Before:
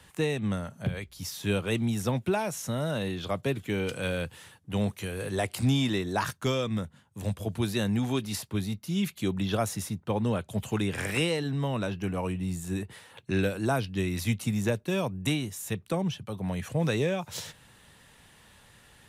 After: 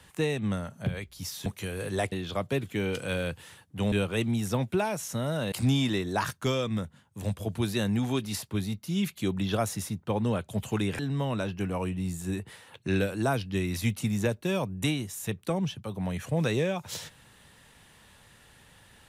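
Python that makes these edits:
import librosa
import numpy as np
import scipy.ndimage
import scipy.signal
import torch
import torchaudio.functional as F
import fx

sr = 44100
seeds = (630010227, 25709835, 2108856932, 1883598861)

y = fx.edit(x, sr, fx.swap(start_s=1.46, length_s=1.6, other_s=4.86, other_length_s=0.66),
    fx.cut(start_s=10.99, length_s=0.43), tone=tone)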